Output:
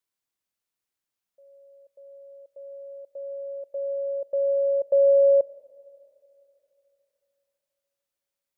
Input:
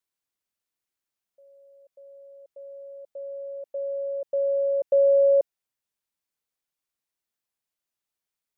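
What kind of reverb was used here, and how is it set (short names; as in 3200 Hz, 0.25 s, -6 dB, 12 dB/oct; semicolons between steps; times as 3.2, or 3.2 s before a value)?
Schroeder reverb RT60 3.2 s, combs from 25 ms, DRR 16.5 dB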